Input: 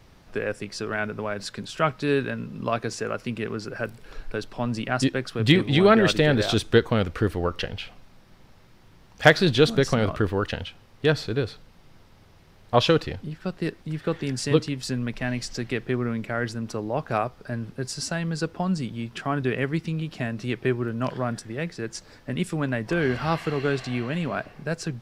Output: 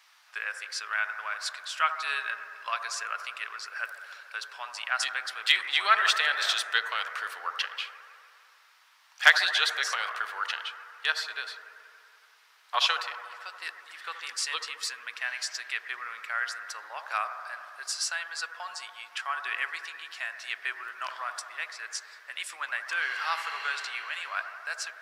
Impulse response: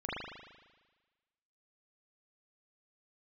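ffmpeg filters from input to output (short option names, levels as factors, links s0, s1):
-filter_complex "[0:a]highpass=f=1100:w=0.5412,highpass=f=1100:w=1.3066,asplit=2[s0][s1];[1:a]atrim=start_sample=2205,asetrate=24255,aresample=44100[s2];[s1][s2]afir=irnorm=-1:irlink=0,volume=0.2[s3];[s0][s3]amix=inputs=2:normalize=0"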